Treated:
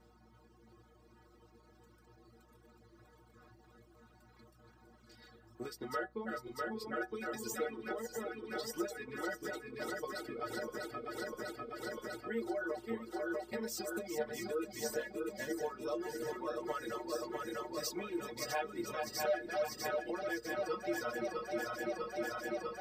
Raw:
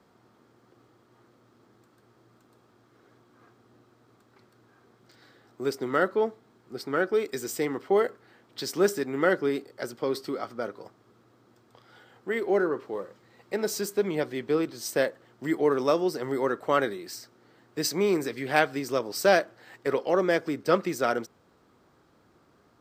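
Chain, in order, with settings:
feedback delay that plays each chunk backwards 324 ms, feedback 85%, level −5.5 dB
downward compressor 5 to 1, threshold −31 dBFS, peak gain reduction 15 dB
stiff-string resonator 110 Hz, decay 0.31 s, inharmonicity 0.008
reverb reduction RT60 1 s
mains hum 60 Hz, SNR 27 dB
level +7 dB

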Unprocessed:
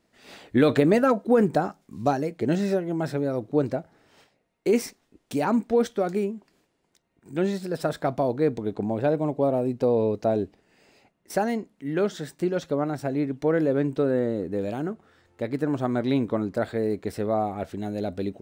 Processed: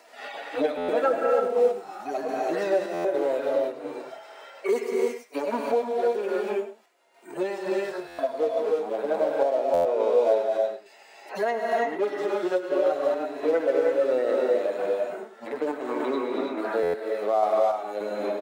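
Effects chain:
harmonic-percussive split with one part muted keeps harmonic
0:09.42–0:10.34: Chebyshev low-pass filter 3,900 Hz, order 8
in parallel at −3.5 dB: dead-zone distortion −37.5 dBFS
on the sum: four-pole ladder high-pass 470 Hz, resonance 25%
on a send: single-tap delay 100 ms −14.5 dB
on the sum: reverb whose tail is shaped and stops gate 360 ms rising, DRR −1.5 dB
sample-and-hold tremolo
buffer that repeats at 0:00.77/0:02.93/0:08.07/0:09.73/0:16.82, samples 512, times 9
multiband upward and downward compressor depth 70%
level +8.5 dB

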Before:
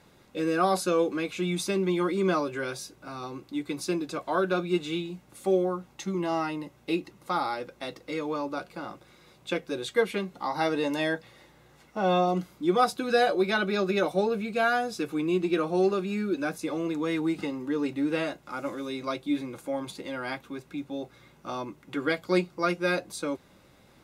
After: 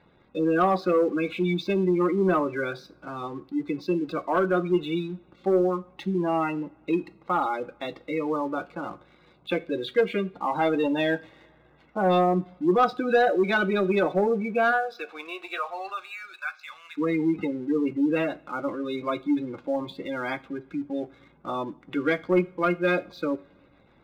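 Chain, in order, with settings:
0:14.71–0:16.97: high-pass filter 460 Hz → 1,400 Hz 24 dB per octave
gate on every frequency bin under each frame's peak −20 dB strong
inverse Chebyshev low-pass filter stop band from 8,900 Hz, stop band 50 dB
leveller curve on the samples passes 1
convolution reverb, pre-delay 3 ms, DRR 14.5 dB

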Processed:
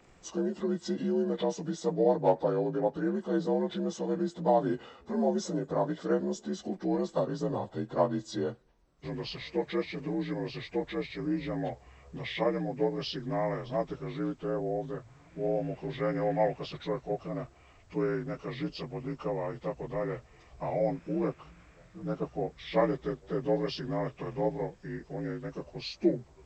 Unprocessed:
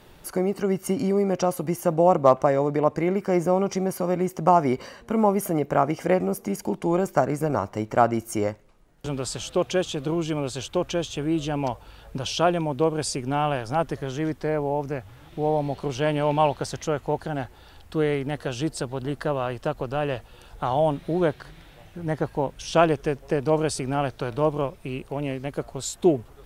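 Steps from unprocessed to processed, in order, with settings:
partials spread apart or drawn together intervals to 84%
level −6 dB

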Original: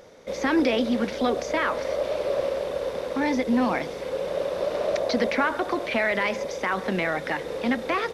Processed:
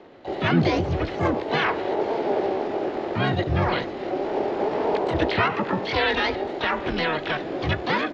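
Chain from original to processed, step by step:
single-sideband voice off tune −160 Hz 250–2,700 Hz
pitch-shifted copies added +7 semitones −4 dB, +12 semitones −5 dB

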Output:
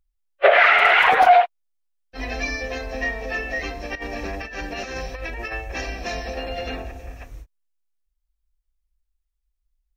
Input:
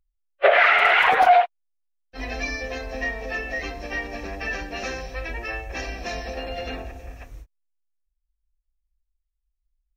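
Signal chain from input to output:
0:03.95–0:05.53: compressor whose output falls as the input rises −32 dBFS, ratio −0.5
level +2 dB

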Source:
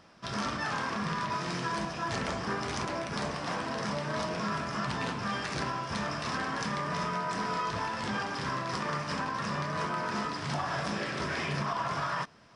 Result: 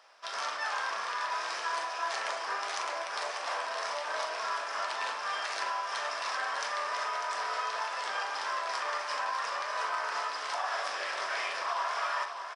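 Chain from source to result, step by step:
high-pass filter 580 Hz 24 dB per octave
double-tracking delay 41 ms −10.5 dB
on a send: repeating echo 597 ms, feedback 59%, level −9 dB

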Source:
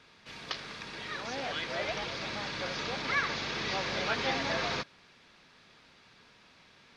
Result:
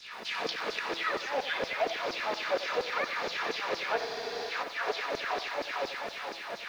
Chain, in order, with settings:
low-shelf EQ 420 Hz +11.5 dB
feedback echo with a high-pass in the loop 449 ms, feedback 59%, high-pass 150 Hz, level −14 dB
on a send at −19.5 dB: convolution reverb RT60 1.4 s, pre-delay 3 ms
on the sum: downward compressor 6 to 1, threshold −43 dBFS, peak gain reduction 18 dB
auto-filter high-pass saw down 4.1 Hz 360–5,500 Hz
wrong playback speed 24 fps film run at 25 fps
surface crackle 140 per second −56 dBFS
in parallel at −0.5 dB: speech leveller within 4 dB
on the sum: high-shelf EQ 3,600 Hz −10.5 dB
hum removal 167 Hz, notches 28
frozen spectrum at 0:03.99, 0.51 s
feedback echo at a low word length 92 ms, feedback 55%, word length 10 bits, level −12 dB
level +9 dB

